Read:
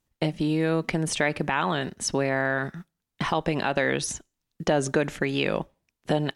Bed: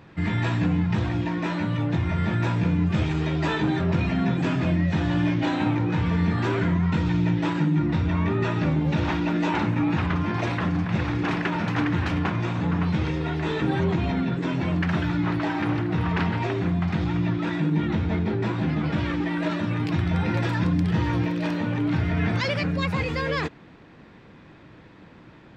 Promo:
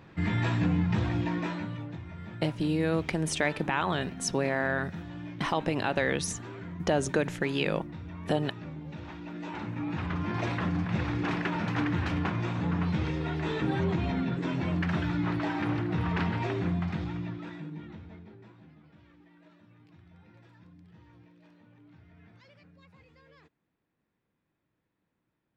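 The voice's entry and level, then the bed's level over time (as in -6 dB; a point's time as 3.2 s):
2.20 s, -3.5 dB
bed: 1.36 s -3.5 dB
2.04 s -18 dB
9.14 s -18 dB
10.4 s -5 dB
16.73 s -5 dB
18.87 s -32.5 dB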